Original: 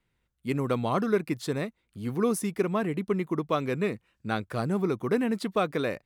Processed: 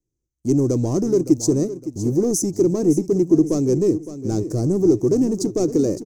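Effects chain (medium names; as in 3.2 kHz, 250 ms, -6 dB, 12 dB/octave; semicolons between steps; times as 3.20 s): waveshaping leveller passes 3; FFT filter 120 Hz 0 dB, 220 Hz -6 dB, 320 Hz +8 dB, 490 Hz -5 dB, 1.5 kHz -27 dB, 3.5 kHz -26 dB, 6.2 kHz +11 dB, 9.6 kHz -6 dB; feedback delay 562 ms, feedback 34%, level -13 dB; trim +2 dB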